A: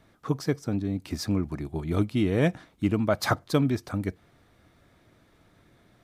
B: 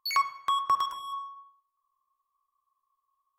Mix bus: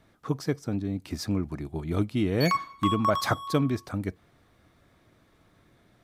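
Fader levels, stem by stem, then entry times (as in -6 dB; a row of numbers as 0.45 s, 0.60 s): -1.5 dB, -1.5 dB; 0.00 s, 2.35 s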